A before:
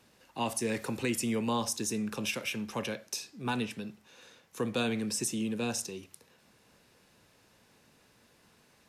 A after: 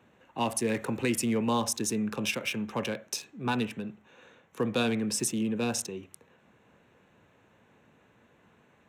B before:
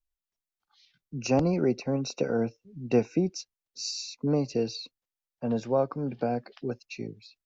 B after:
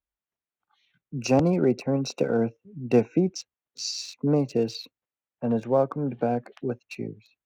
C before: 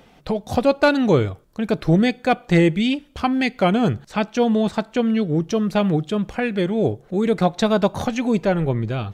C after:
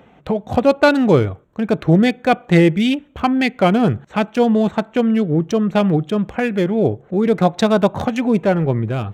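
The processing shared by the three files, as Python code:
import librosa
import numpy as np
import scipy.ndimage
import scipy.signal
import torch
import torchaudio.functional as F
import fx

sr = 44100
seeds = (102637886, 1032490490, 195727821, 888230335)

y = fx.wiener(x, sr, points=9)
y = scipy.signal.sosfilt(scipy.signal.butter(2, 62.0, 'highpass', fs=sr, output='sos'), y)
y = y * librosa.db_to_amplitude(3.5)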